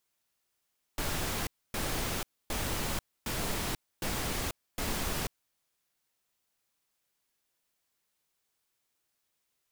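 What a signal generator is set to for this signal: noise bursts pink, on 0.49 s, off 0.27 s, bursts 6, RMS -33 dBFS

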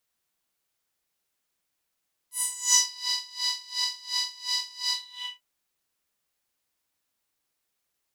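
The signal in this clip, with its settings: synth patch with tremolo B5, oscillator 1 saw, interval 0 st, sub -25 dB, noise -12 dB, filter bandpass, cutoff 2.7 kHz, Q 5.7, filter envelope 2 oct, filter decay 0.63 s, attack 284 ms, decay 0.42 s, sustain -11.5 dB, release 0.50 s, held 2.60 s, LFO 2.8 Hz, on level 22.5 dB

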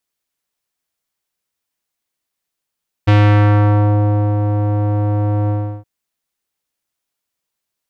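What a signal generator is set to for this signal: synth note square G#2 12 dB/octave, low-pass 770 Hz, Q 1.1, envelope 2 oct, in 0.90 s, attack 14 ms, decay 1.28 s, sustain -7 dB, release 0.35 s, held 2.42 s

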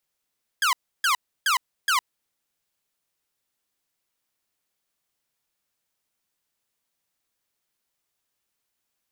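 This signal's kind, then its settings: burst of laser zaps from 1.7 kHz, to 950 Hz, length 0.11 s saw, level -16 dB, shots 4, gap 0.31 s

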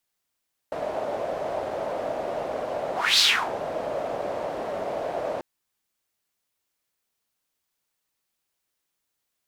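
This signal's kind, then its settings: whoosh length 4.69 s, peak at 2.48 s, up 0.28 s, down 0.33 s, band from 610 Hz, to 4.3 kHz, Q 4.2, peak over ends 12 dB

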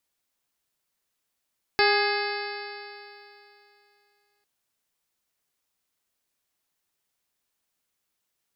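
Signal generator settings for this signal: stretched partials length 2.65 s, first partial 407 Hz, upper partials -1/-7/-1/-4/-6/-18/-14.5/-9/-4/-10 dB, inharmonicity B 0.0026, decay 2.82 s, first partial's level -22 dB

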